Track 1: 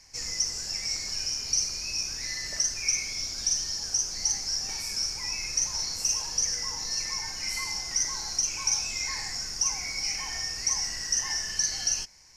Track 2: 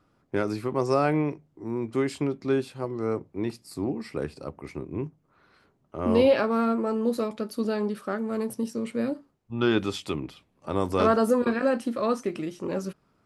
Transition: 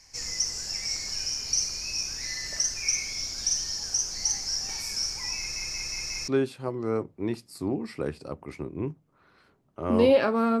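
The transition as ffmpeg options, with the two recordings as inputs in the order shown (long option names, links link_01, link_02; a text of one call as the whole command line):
ffmpeg -i cue0.wav -i cue1.wav -filter_complex "[0:a]apad=whole_dur=10.6,atrim=end=10.6,asplit=5[link_01][link_02][link_03][link_04][link_05];[link_01]atrim=end=5.562[link_06];[link_02]atrim=start=5.378:end=5.562[link_07];[link_03]atrim=start=5.378:end=5.562[link_08];[link_04]atrim=start=5.378:end=5.562[link_09];[link_05]atrim=start=5.378:end=5.562[link_10];[1:a]atrim=start=2.438:end=6.76[link_11];[link_06][link_07]acrossfade=duration=0.004:curve1=hsin:curve2=hsin[link_12];[link_12][link_08]acrossfade=duration=0.004:curve1=hsin:curve2=hsin[link_13];[link_13][link_09]acrossfade=duration=0.004:curve1=hsin:curve2=hsin[link_14];[link_14][link_10]acrossfade=duration=0.004:curve1=hsin:curve2=hsin[link_15];[link_15][link_11]acrossfade=duration=0.004:curve1=hsin:curve2=hsin" out.wav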